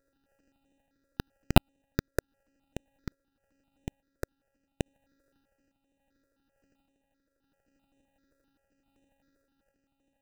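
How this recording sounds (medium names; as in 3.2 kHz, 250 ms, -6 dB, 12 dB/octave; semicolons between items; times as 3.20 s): a buzz of ramps at a fixed pitch in blocks of 32 samples; random-step tremolo; aliases and images of a low sample rate 1.1 kHz, jitter 0%; notches that jump at a steady rate 7.7 Hz 810–4700 Hz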